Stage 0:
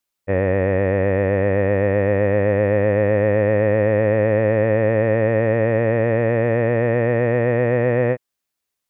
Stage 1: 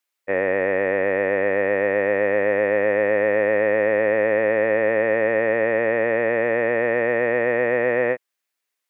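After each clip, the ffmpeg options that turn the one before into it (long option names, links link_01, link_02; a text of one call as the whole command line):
ffmpeg -i in.wav -af "highpass=330,equalizer=frequency=2000:width_type=o:width=1:gain=5.5,volume=-1dB" out.wav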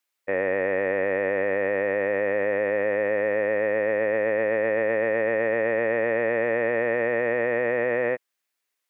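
ffmpeg -i in.wav -af "alimiter=limit=-15.5dB:level=0:latency=1:release=14" out.wav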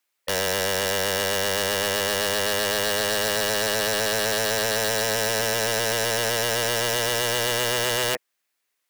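ffmpeg -i in.wav -af "acontrast=36,aeval=exprs='(mod(6.68*val(0)+1,2)-1)/6.68':channel_layout=same,volume=-2dB" out.wav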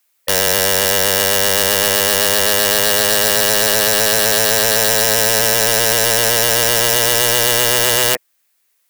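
ffmpeg -i in.wav -af "crystalizer=i=1:c=0,volume=7dB" out.wav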